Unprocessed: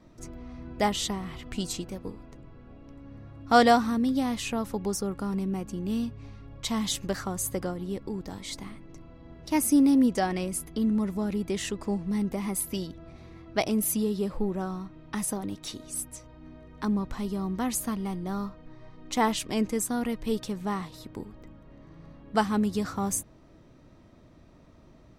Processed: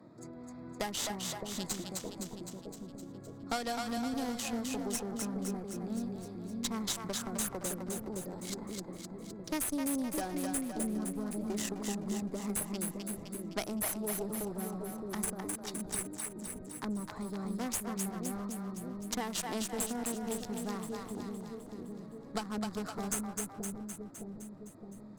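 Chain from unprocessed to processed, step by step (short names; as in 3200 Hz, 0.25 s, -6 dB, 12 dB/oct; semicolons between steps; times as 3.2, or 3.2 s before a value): Wiener smoothing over 15 samples; HPF 110 Hz 24 dB/oct; tone controls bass -2 dB, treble +9 dB; compressor, threshold -24 dBFS, peak gain reduction 11 dB; added harmonics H 8 -19 dB, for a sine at -8.5 dBFS; split-band echo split 540 Hz, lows 0.615 s, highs 0.257 s, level -4 dB; three-band squash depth 40%; gain -7 dB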